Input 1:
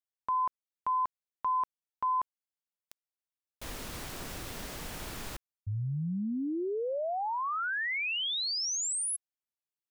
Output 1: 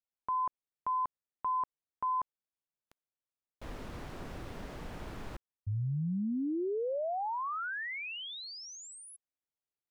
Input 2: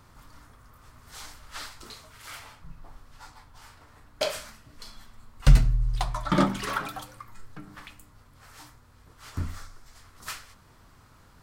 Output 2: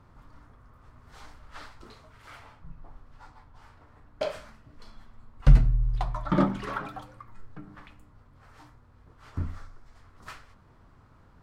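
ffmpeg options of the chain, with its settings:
-af "lowpass=f=1100:p=1"

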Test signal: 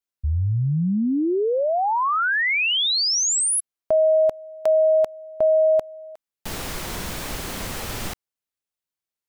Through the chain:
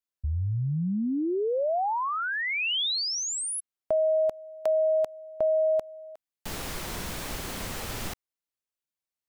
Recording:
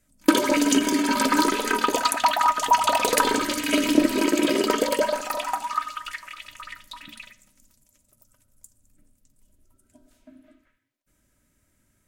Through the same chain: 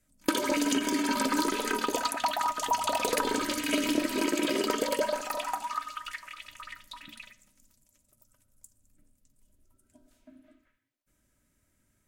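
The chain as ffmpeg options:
-filter_complex "[0:a]acrossover=split=730|3300[s0][s1][s2];[s0]acompressor=threshold=0.0891:ratio=4[s3];[s1]acompressor=threshold=0.0501:ratio=4[s4];[s2]acompressor=threshold=0.0447:ratio=4[s5];[s3][s4][s5]amix=inputs=3:normalize=0,volume=0.596"

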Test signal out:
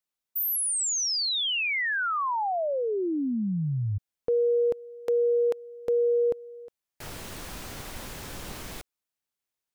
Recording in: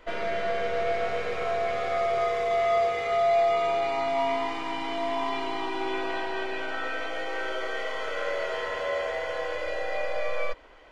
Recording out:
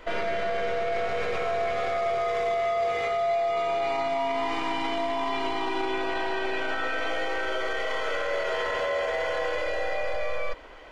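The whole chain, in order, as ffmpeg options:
-af "alimiter=level_in=1.26:limit=0.0631:level=0:latency=1:release=22,volume=0.794,volume=2"

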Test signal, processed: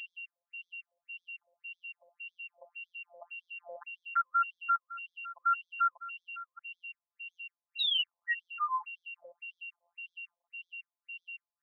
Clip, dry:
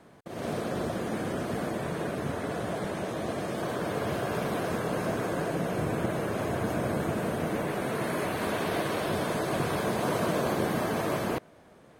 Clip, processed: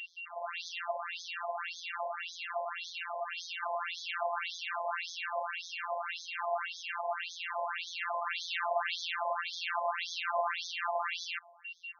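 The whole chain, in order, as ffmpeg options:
-filter_complex "[0:a]acrossover=split=3500[s0][s1];[s1]acompressor=threshold=0.00631:ratio=4:attack=1:release=60[s2];[s0][s2]amix=inputs=2:normalize=0,aeval=exprs='val(0)+0.00631*sin(2*PI*2800*n/s)':c=same,highshelf=f=3100:g=9,afftfilt=real='hypot(re,im)*cos(PI*b)':imag='0':win_size=1024:overlap=0.75,afftfilt=real='re*between(b*sr/1024,750*pow(4700/750,0.5+0.5*sin(2*PI*1.8*pts/sr))/1.41,750*pow(4700/750,0.5+0.5*sin(2*PI*1.8*pts/sr))*1.41)':imag='im*between(b*sr/1024,750*pow(4700/750,0.5+0.5*sin(2*PI*1.8*pts/sr))/1.41,750*pow(4700/750,0.5+0.5*sin(2*PI*1.8*pts/sr))*1.41)':win_size=1024:overlap=0.75,volume=2"

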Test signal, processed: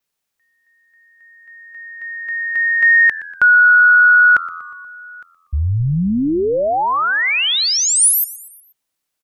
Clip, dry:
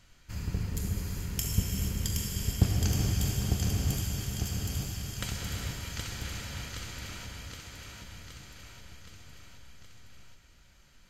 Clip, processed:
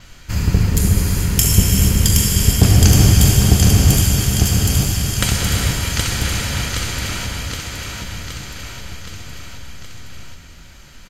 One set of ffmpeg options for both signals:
-filter_complex "[0:a]acontrast=81,adynamicequalizer=threshold=0.00224:dfrequency=9600:dqfactor=3.5:tfrequency=9600:tqfactor=3.5:attack=5:release=100:ratio=0.375:range=3.5:mode=boostabove:tftype=bell,apsyclip=4.47,asplit=2[s0][s1];[s1]asplit=4[s2][s3][s4][s5];[s2]adelay=120,afreqshift=-85,volume=0.126[s6];[s3]adelay=240,afreqshift=-170,volume=0.0653[s7];[s4]adelay=360,afreqshift=-255,volume=0.0339[s8];[s5]adelay=480,afreqshift=-340,volume=0.0178[s9];[s6][s7][s8][s9]amix=inputs=4:normalize=0[s10];[s0][s10]amix=inputs=2:normalize=0,volume=0.75"

